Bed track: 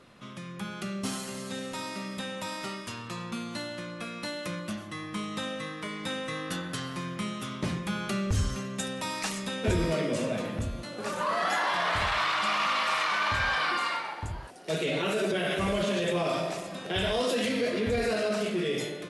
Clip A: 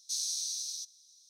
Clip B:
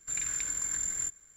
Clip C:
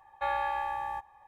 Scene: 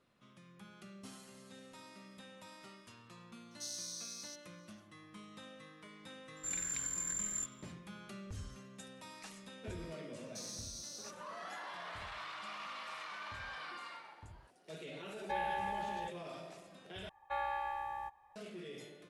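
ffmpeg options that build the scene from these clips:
-filter_complex "[1:a]asplit=2[a][b];[3:a]asplit=2[c][d];[0:a]volume=-18.5dB[e];[b]alimiter=level_in=3dB:limit=-24dB:level=0:latency=1:release=71,volume=-3dB[f];[c]asuperstop=centerf=1300:order=20:qfactor=3.6[g];[e]asplit=2[h][i];[h]atrim=end=17.094[j];[d]atrim=end=1.27,asetpts=PTS-STARTPTS,volume=-7dB[k];[i]atrim=start=18.356[l];[a]atrim=end=1.29,asetpts=PTS-STARTPTS,volume=-10dB,afade=t=in:d=0.004:c=hsin,afade=t=out:st=1.286:d=0.004:c=hsin,adelay=3510[m];[2:a]atrim=end=1.36,asetpts=PTS-STARTPTS,volume=-6dB,afade=t=in:d=0.004:c=hsin,afade=t=out:st=1.356:d=0.004:c=hsin,adelay=6360[n];[f]atrim=end=1.29,asetpts=PTS-STARTPTS,volume=-10dB,afade=t=in:d=0.004:c=hsin,afade=t=out:st=1.286:d=0.004:c=hsin,adelay=452466S[o];[g]atrim=end=1.27,asetpts=PTS-STARTPTS,volume=-6dB,afade=t=in:d=0.004:c=hsin,afade=t=out:st=1.266:d=0.004:c=hsin,adelay=665028S[p];[j][k]acrossfade=d=0.004:c1=hsin:c2=hsin[q];[q][l]acrossfade=d=0.004:c1=hsin:c2=hsin[r];[r][m][n][o][p]amix=inputs=5:normalize=0"

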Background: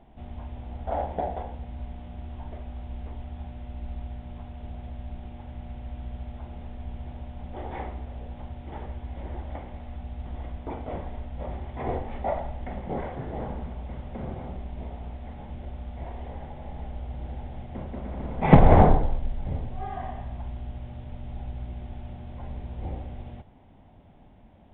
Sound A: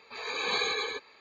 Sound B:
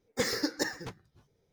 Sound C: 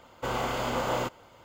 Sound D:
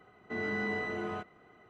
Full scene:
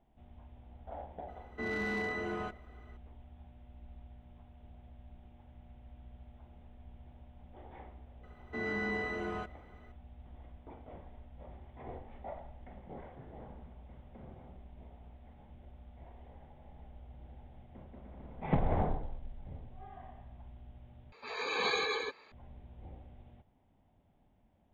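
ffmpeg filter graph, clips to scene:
-filter_complex "[4:a]asplit=2[a][b];[0:a]volume=-16dB[c];[a]volume=28.5dB,asoftclip=hard,volume=-28.5dB[d];[1:a]highshelf=f=3k:g=-8[e];[c]asplit=2[f][g];[f]atrim=end=21.124[h];[e]atrim=end=1.2[i];[g]atrim=start=22.316[j];[d]atrim=end=1.69,asetpts=PTS-STARTPTS,volume=-1dB,afade=t=in:d=0.004:c=hsin,afade=t=out:st=1.686:d=0.004:c=hsin,adelay=1280[k];[b]atrim=end=1.69,asetpts=PTS-STARTPTS,volume=-1.5dB,afade=t=in:d=0.004:c=hsin,afade=t=out:st=1.686:d=0.004:c=hsin,adelay=8230[l];[h][i]acrossfade=d=0.004:c1=hsin:c2=hsin[m];[m][j]acrossfade=d=0.004:c1=hsin:c2=hsin[n];[n][k][l]amix=inputs=3:normalize=0"

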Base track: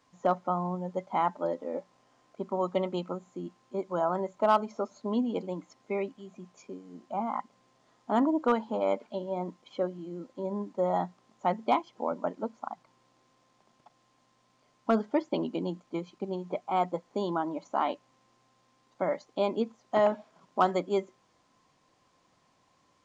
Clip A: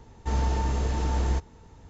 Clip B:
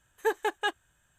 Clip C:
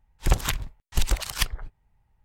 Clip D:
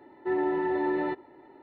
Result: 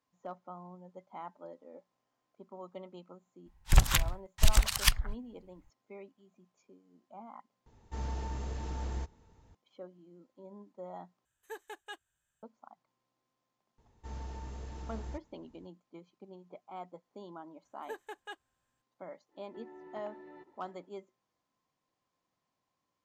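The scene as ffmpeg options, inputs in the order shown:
-filter_complex "[1:a]asplit=2[a][b];[2:a]asplit=2[c][d];[0:a]volume=-17dB[e];[3:a]equalizer=f=410:w=1.5:g=-13.5[f];[c]highshelf=f=2.7k:g=6.5[g];[4:a]acompressor=threshold=-36dB:ratio=6:attack=3.2:release=140:knee=1:detection=peak[h];[e]asplit=3[i][j][k];[i]atrim=end=7.664[l];[a]atrim=end=1.89,asetpts=PTS-STARTPTS,volume=-11.5dB[m];[j]atrim=start=9.546:end=11.254[n];[g]atrim=end=1.18,asetpts=PTS-STARTPTS,volume=-18dB[o];[k]atrim=start=12.426[p];[f]atrim=end=2.24,asetpts=PTS-STARTPTS,afade=t=in:d=0.004:c=hsin,afade=t=out:st=2.236:d=0.004:c=hsin,adelay=3460[q];[b]atrim=end=1.89,asetpts=PTS-STARTPTS,volume=-17dB,afade=t=in:d=0.004:c=hsin,afade=t=out:st=1.886:d=0.004:c=hsin,adelay=13780[r];[d]atrim=end=1.18,asetpts=PTS-STARTPTS,volume=-16dB,afade=t=in:d=0.004:c=hsin,afade=t=out:st=1.176:d=0.004:c=hsin,adelay=777924S[s];[h]atrim=end=1.62,asetpts=PTS-STARTPTS,volume=-13dB,afade=t=in:d=0.1,afade=t=out:st=1.52:d=0.1,adelay=19290[t];[l][m]acrossfade=d=0.004:c1=hsin:c2=hsin[u];[u][n]acrossfade=d=0.004:c1=hsin:c2=hsin[v];[v][o]acrossfade=d=0.004:c1=hsin:c2=hsin[w];[w][p]acrossfade=d=0.004:c1=hsin:c2=hsin[x];[x][q][r][s][t]amix=inputs=5:normalize=0"

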